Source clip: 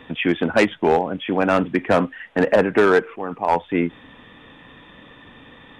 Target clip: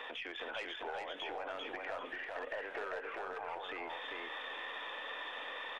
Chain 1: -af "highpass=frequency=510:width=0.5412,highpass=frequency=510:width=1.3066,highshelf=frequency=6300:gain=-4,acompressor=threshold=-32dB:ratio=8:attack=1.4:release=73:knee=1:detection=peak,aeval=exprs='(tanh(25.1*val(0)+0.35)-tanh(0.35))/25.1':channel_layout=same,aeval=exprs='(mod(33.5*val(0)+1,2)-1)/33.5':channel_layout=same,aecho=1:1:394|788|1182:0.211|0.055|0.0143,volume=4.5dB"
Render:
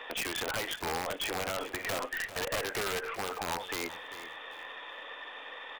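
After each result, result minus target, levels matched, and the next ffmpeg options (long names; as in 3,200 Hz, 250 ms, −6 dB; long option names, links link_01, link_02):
downward compressor: peak gain reduction −10.5 dB; echo-to-direct −11 dB
-af "highpass=frequency=510:width=0.5412,highpass=frequency=510:width=1.3066,highshelf=frequency=6300:gain=-4,acompressor=threshold=-44dB:ratio=8:attack=1.4:release=73:knee=1:detection=peak,aeval=exprs='(tanh(25.1*val(0)+0.35)-tanh(0.35))/25.1':channel_layout=same,aeval=exprs='(mod(33.5*val(0)+1,2)-1)/33.5':channel_layout=same,aecho=1:1:394|788|1182:0.211|0.055|0.0143,volume=4.5dB"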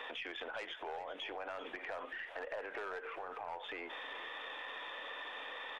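echo-to-direct −11 dB
-af "highpass=frequency=510:width=0.5412,highpass=frequency=510:width=1.3066,highshelf=frequency=6300:gain=-4,acompressor=threshold=-44dB:ratio=8:attack=1.4:release=73:knee=1:detection=peak,aeval=exprs='(tanh(25.1*val(0)+0.35)-tanh(0.35))/25.1':channel_layout=same,aeval=exprs='(mod(33.5*val(0)+1,2)-1)/33.5':channel_layout=same,aecho=1:1:394|788|1182|1576:0.75|0.195|0.0507|0.0132,volume=4.5dB"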